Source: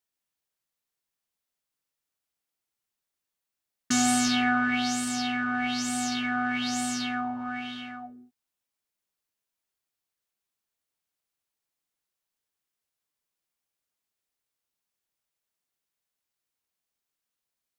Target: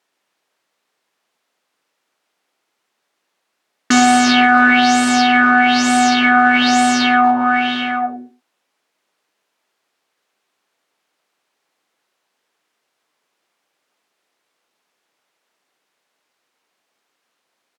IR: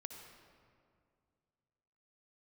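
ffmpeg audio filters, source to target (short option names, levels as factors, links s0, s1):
-filter_complex "[0:a]highpass=300,aemphasis=mode=reproduction:type=75fm,asplit=2[s0][s1];[s1]acompressor=threshold=0.0178:ratio=6,volume=0.794[s2];[s0][s2]amix=inputs=2:normalize=0,asplit=2[s3][s4];[s4]adelay=100,highpass=300,lowpass=3400,asoftclip=type=hard:threshold=0.0708,volume=0.2[s5];[s3][s5]amix=inputs=2:normalize=0,alimiter=level_in=7.94:limit=0.891:release=50:level=0:latency=1,volume=0.891"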